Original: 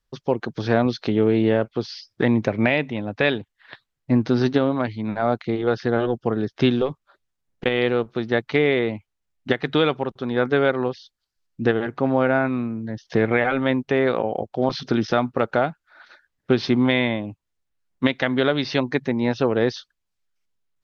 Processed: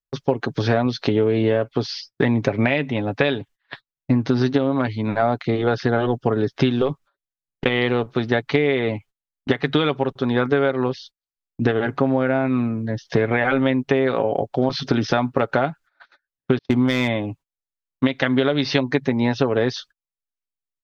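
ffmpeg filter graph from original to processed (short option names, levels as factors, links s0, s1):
-filter_complex "[0:a]asettb=1/sr,asplit=3[s0][s1][s2];[s0]atrim=end=16.584[s3];[s1]atrim=start=16.58:end=17.15,asetpts=PTS-STARTPTS,afade=t=in:d=0.004:c=qsin,afade=t=out:st=0.566:d=0.004:c=qsin,agate=range=0.00708:threshold=0.0562:ratio=16:release=100:detection=peak,equalizer=f=86:t=o:w=0.42:g=6,asoftclip=type=hard:threshold=0.335[s4];[s2]atrim=start=17.146[s5];[s3][s4]acrossfade=d=0.004:c1=hsin:c2=qsin[s6];[s6][s5]acrossfade=d=0.004:c1=qsin:c2=hsin,agate=range=0.0562:threshold=0.00562:ratio=16:detection=peak,aecho=1:1:7.2:0.39,acompressor=threshold=0.1:ratio=6,volume=1.88"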